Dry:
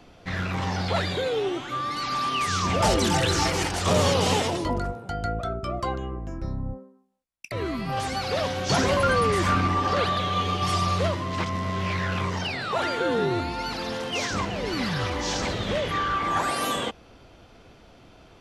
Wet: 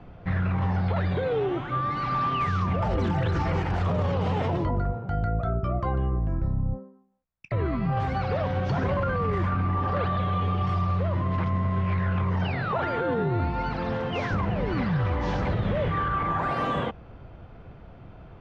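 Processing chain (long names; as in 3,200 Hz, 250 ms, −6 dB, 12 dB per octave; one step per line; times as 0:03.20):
low-pass filter 1,700 Hz 12 dB per octave
low shelf with overshoot 200 Hz +6 dB, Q 1.5
brickwall limiter −20.5 dBFS, peak gain reduction 12.5 dB
level +2.5 dB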